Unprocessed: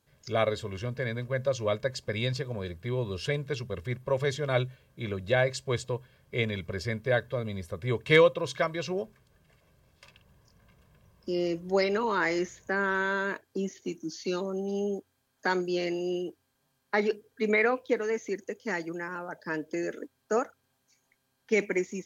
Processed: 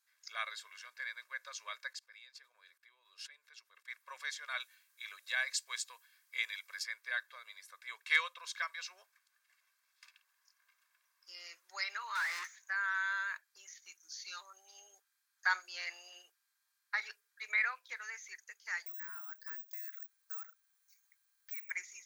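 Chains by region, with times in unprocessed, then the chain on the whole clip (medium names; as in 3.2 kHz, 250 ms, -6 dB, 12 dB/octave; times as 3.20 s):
1.93–3.88 s: bass shelf 470 Hz +8.5 dB + level held to a coarse grid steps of 20 dB
4.60–6.84 s: treble shelf 4.8 kHz +9 dB + band-stop 1.4 kHz, Q 16
12.15–12.58 s: overdrive pedal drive 36 dB, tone 1.3 kHz, clips at -15.5 dBFS + upward expansion 2.5:1, over -33 dBFS
15.46–16.26 s: peaking EQ 730 Hz +7.5 dB 2.8 oct + hum notches 60/120/180/240/300/360 Hz
18.86–21.71 s: compression 5:1, threshold -39 dBFS + careless resampling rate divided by 2×, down none, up zero stuff
whole clip: high-pass 1.3 kHz 24 dB/octave; peaking EQ 3 kHz -8.5 dB 0.33 oct; trim -3 dB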